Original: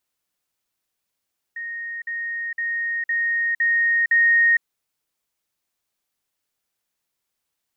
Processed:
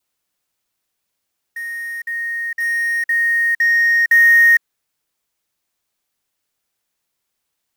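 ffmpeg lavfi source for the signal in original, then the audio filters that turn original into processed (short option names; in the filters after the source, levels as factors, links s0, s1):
-f lavfi -i "aevalsrc='pow(10,(-28+3*floor(t/0.51))/20)*sin(2*PI*1860*t)*clip(min(mod(t,0.51),0.46-mod(t,0.51))/0.005,0,1)':d=3.06:s=44100"
-filter_complex "[0:a]adynamicequalizer=threshold=0.0316:dfrequency=1700:dqfactor=5.3:tfrequency=1700:tqfactor=5.3:attack=5:release=100:ratio=0.375:range=1.5:mode=boostabove:tftype=bell,asplit=2[s0][s1];[s1]acrusher=bits=2:mode=log:mix=0:aa=0.000001,volume=0.596[s2];[s0][s2]amix=inputs=2:normalize=0"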